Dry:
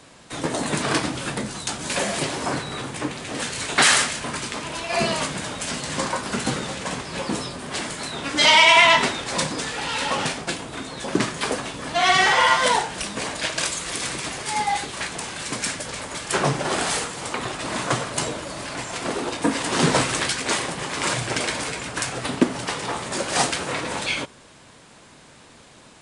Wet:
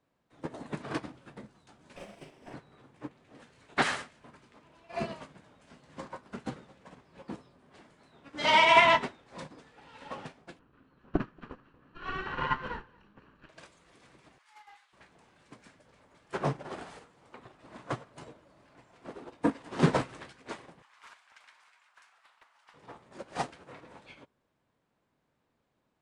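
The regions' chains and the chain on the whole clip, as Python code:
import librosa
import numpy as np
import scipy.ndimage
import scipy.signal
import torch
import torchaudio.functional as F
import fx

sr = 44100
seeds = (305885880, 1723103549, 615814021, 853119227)

y = fx.chain(x, sr, fx.lower_of_two(delay_ms=0.36),
    fx.low_shelf(hz=350.0, db=-4.5),
    fx.doubler(ms=39.0, db=-5.0), at=(1.96, 2.54))
y = fx.chain(y, sr, fx.lower_of_two(delay_ms=0.71),
    fx.lowpass(hz=2600.0, slope=12),
    fx.echo_single(ms=232, db=-11.5), at=(10.59, 13.49))
y = fx.chain(y, sr, fx.highpass(hz=1000.0, slope=24),
    fx.doppler_dist(depth_ms=0.1), at=(14.38, 14.93))
y = fx.chain(y, sr, fx.cheby2_highpass(hz=280.0, order=4, stop_db=60),
    fx.doppler_dist(depth_ms=0.2), at=(20.82, 22.74))
y = fx.lowpass(y, sr, hz=1300.0, slope=6)
y = fx.upward_expand(y, sr, threshold_db=-33.0, expansion=2.5)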